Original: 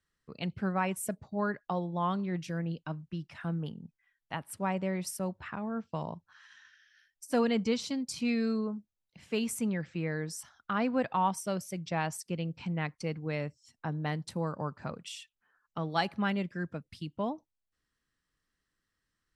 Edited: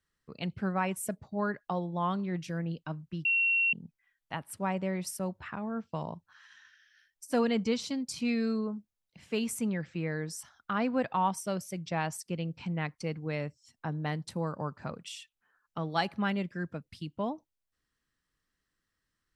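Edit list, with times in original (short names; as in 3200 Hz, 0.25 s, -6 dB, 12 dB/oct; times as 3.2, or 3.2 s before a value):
3.25–3.73 bleep 2730 Hz -23.5 dBFS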